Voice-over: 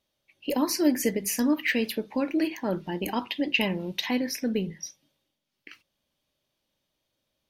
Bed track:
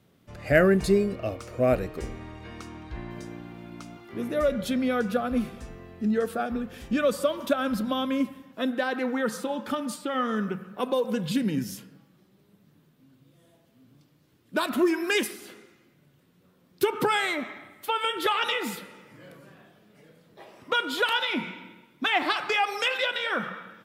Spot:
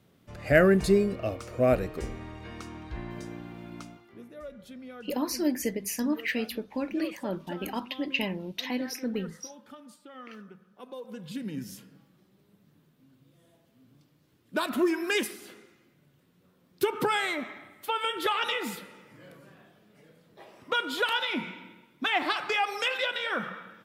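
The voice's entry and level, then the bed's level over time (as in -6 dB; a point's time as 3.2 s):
4.60 s, -4.5 dB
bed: 3.81 s -0.5 dB
4.3 s -18.5 dB
10.76 s -18.5 dB
11.99 s -2.5 dB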